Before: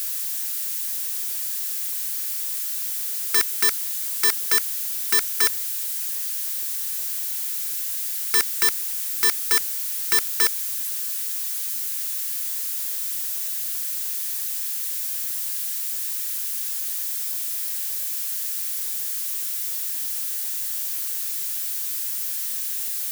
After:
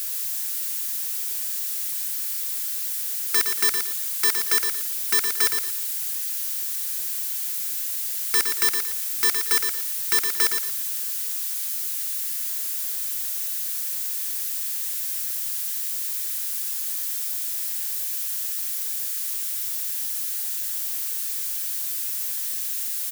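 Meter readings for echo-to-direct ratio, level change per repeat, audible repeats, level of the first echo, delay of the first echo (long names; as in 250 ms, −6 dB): −5.5 dB, −11.0 dB, 3, −6.0 dB, 115 ms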